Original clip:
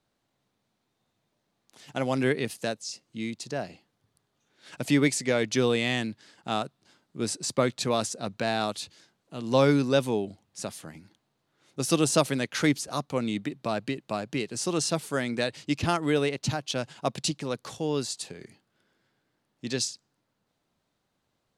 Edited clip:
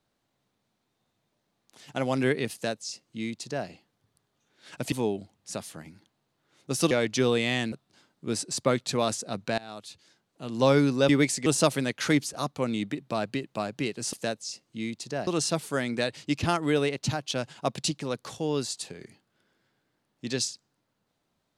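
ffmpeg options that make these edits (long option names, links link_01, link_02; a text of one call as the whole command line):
ffmpeg -i in.wav -filter_complex "[0:a]asplit=9[link_01][link_02][link_03][link_04][link_05][link_06][link_07][link_08][link_09];[link_01]atrim=end=4.922[link_10];[link_02]atrim=start=10.008:end=12.002[link_11];[link_03]atrim=start=5.288:end=6.102[link_12];[link_04]atrim=start=6.638:end=8.5,asetpts=PTS-STARTPTS,afade=type=out:start_time=1.858:duration=0.004:curve=hsin:silence=0.0841395[link_13];[link_05]atrim=start=8.5:end=10.012,asetpts=PTS-STARTPTS,afade=type=in:duration=0.88:silence=0.0841395[link_14];[link_06]atrim=start=4.918:end=5.292[link_15];[link_07]atrim=start=11.998:end=14.672[link_16];[link_08]atrim=start=2.528:end=3.672[link_17];[link_09]atrim=start=14.668[link_18];[link_10][link_11]acrossfade=duration=0.004:curve1=hsin:curve2=hsin[link_19];[link_19][link_12]acrossfade=duration=0.004:curve1=hsin:curve2=hsin[link_20];[link_13][link_14]concat=n=2:v=0:a=1[link_21];[link_20][link_21]acrossfade=duration=0.004:curve1=hsin:curve2=hsin[link_22];[link_22][link_15]acrossfade=duration=0.004:curve1=hsin:curve2=hsin[link_23];[link_23][link_16]acrossfade=duration=0.004:curve1=hsin:curve2=hsin[link_24];[link_24][link_17]acrossfade=duration=0.004:curve1=hsin:curve2=hsin[link_25];[link_25][link_18]acrossfade=duration=0.004:curve1=hsin:curve2=hsin" out.wav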